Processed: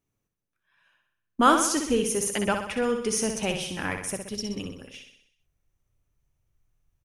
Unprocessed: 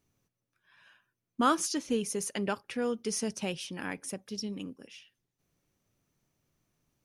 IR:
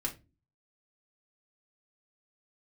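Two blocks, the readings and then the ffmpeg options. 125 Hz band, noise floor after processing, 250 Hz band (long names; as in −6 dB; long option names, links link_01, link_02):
+6.0 dB, −82 dBFS, +5.5 dB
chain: -af "agate=range=-13dB:threshold=-51dB:ratio=16:detection=peak,equalizer=frequency=4700:width_type=o:width=0.54:gain=-6,aecho=1:1:63|126|189|252|315|378|441:0.473|0.26|0.143|0.0787|0.0433|0.0238|0.0131,asubboost=boost=11.5:cutoff=66,volume=7.5dB"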